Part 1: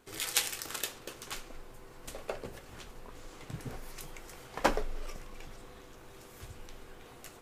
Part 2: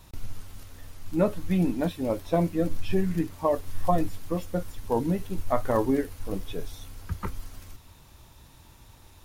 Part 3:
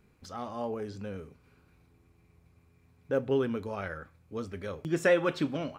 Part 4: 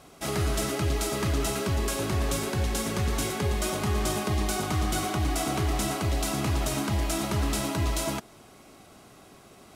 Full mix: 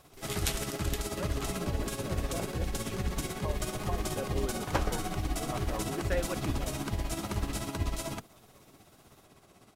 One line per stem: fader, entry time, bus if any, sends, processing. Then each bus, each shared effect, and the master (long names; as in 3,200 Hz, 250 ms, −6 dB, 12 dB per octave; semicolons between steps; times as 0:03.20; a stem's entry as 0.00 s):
−4.5 dB, 0.10 s, no send, no echo send, no processing
−14.0 dB, 0.00 s, no send, echo send −12.5 dB, spectral tilt +2 dB per octave
−9.5 dB, 1.05 s, no send, no echo send, no processing
−5.0 dB, 0.00 s, no send, no echo send, sub-octave generator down 1 octave, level −2 dB; amplitude tremolo 16 Hz, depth 60%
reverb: not used
echo: repeating echo 937 ms, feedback 47%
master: no processing